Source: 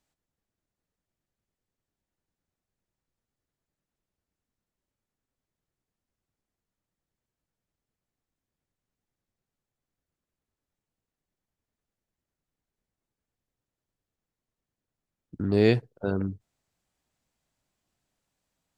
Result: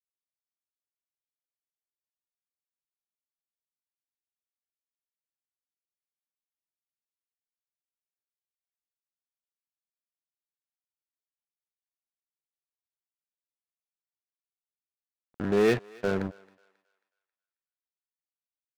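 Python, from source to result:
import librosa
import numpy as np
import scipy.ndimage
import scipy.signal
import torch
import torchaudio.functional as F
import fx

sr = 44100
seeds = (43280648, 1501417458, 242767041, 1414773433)

y = fx.cabinet(x, sr, low_hz=200.0, low_slope=12, high_hz=3200.0, hz=(290.0, 1000.0, 1700.0), db=(-8, -7, 7))
y = np.sign(y) * np.maximum(np.abs(y) - 10.0 ** (-40.5 / 20.0), 0.0)
y = fx.leveller(y, sr, passes=3)
y = fx.echo_thinned(y, sr, ms=270, feedback_pct=37, hz=700.0, wet_db=-22.0)
y = F.gain(torch.from_numpy(y), -4.5).numpy()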